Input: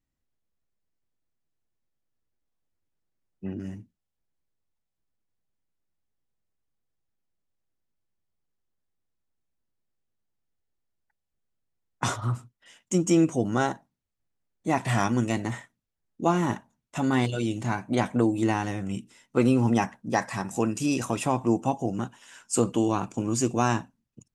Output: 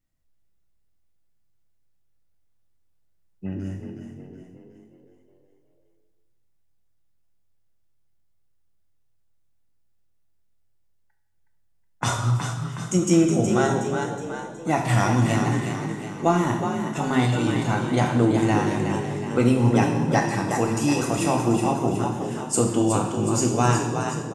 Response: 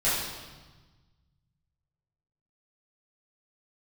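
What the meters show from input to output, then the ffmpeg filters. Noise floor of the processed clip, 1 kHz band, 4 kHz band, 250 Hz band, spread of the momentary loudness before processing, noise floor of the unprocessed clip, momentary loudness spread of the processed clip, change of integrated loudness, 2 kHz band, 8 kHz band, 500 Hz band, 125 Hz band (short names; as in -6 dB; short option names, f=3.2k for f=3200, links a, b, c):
-63 dBFS, +4.5 dB, +5.0 dB, +4.0 dB, 13 LU, -83 dBFS, 11 LU, +4.0 dB, +4.5 dB, +5.5 dB, +4.5 dB, +7.0 dB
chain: -filter_complex "[0:a]asplit=7[a][b][c][d][e][f][g];[b]adelay=368,afreqshift=40,volume=-6.5dB[h];[c]adelay=736,afreqshift=80,volume=-12.7dB[i];[d]adelay=1104,afreqshift=120,volume=-18.9dB[j];[e]adelay=1472,afreqshift=160,volume=-25.1dB[k];[f]adelay=1840,afreqshift=200,volume=-31.3dB[l];[g]adelay=2208,afreqshift=240,volume=-37.5dB[m];[a][h][i][j][k][l][m]amix=inputs=7:normalize=0,asplit=2[n][o];[1:a]atrim=start_sample=2205,lowshelf=f=150:g=5,highshelf=f=5.9k:g=7.5[p];[o][p]afir=irnorm=-1:irlink=0,volume=-14.5dB[q];[n][q]amix=inputs=2:normalize=0"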